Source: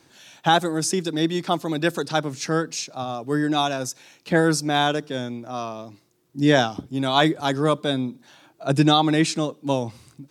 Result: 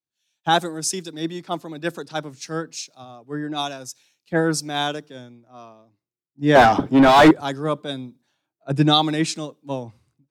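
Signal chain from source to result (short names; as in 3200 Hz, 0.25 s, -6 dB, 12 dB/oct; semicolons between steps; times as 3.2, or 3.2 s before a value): 6.55–7.31 overdrive pedal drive 32 dB, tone 1300 Hz, clips at -4.5 dBFS; three-band expander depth 100%; gain -3.5 dB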